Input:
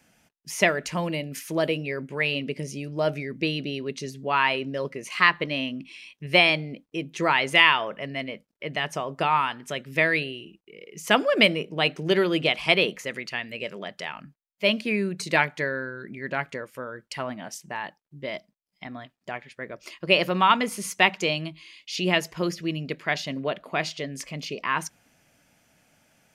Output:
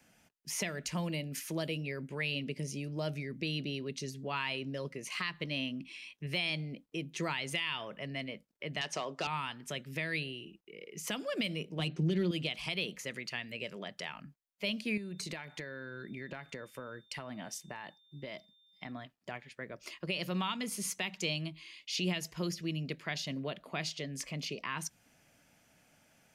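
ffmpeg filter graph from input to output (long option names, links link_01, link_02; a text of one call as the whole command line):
ffmpeg -i in.wav -filter_complex "[0:a]asettb=1/sr,asplit=3[link_01][link_02][link_03];[link_01]atrim=end=8.814[link_04];[link_02]atrim=start=8.81:end=9.27,asetpts=PTS-STARTPTS,afade=type=in:duration=0.004:curve=qsin,afade=type=out:start_time=0.456:duration=0.004:curve=qsin,acontrast=89,volume=14.5dB,asoftclip=hard,volume=-14.5dB,highpass=330,lowpass=6200[link_05];[link_03]atrim=start=9.266[link_06];[link_04][link_05]acrossfade=duration=0.004:curve1=hsin:curve2=qsin[link_07];[link_07][link_06]acrossfade=duration=0.004:curve1=qsin:curve2=hsin,asettb=1/sr,asplit=3[link_08][link_09][link_10];[link_08]atrim=end=11.794[link_11];[link_09]atrim=start=11.79:end=12.31,asetpts=PTS-STARTPTS,afade=type=in:duration=0.004:curve=qsin,afade=type=out:start_time=0.516:duration=0.004:curve=qsin,equalizer=frequency=230:width=0.53:gain=8.5,adynamicsmooth=sensitivity=1.5:basefreq=6100,aecho=1:1:5.7:0.52,atrim=end_sample=22932[link_12];[link_10]atrim=start=12.306[link_13];[link_11][link_12]acrossfade=duration=0.004:curve1=hsin:curve2=qsin[link_14];[link_14][link_13]acrossfade=duration=0.004:curve1=qsin:curve2=hsin,asettb=1/sr,asplit=3[link_15][link_16][link_17];[link_15]atrim=end=14.974[link_18];[link_16]atrim=start=14.97:end=18.92,asetpts=PTS-STARTPTS,afade=type=in:duration=0.004:curve=qsin,afade=type=out:start_time=3.946:duration=0.004:curve=qsin,acompressor=threshold=-32dB:ratio=6:attack=3.2:release=140:knee=1:detection=peak,aeval=exprs='val(0)+0.000891*sin(2*PI*3600*n/s)':channel_layout=same[link_19];[link_17]atrim=start=18.916[link_20];[link_18][link_19]acrossfade=duration=0.004:curve1=hsin:curve2=qsin[link_21];[link_21][link_20]acrossfade=duration=0.004:curve1=qsin:curve2=hsin,acrossover=split=220|3000[link_22][link_23][link_24];[link_23]acompressor=threshold=-41dB:ratio=2[link_25];[link_22][link_25][link_24]amix=inputs=3:normalize=0,alimiter=limit=-19.5dB:level=0:latency=1:release=116,volume=-3.5dB" out.wav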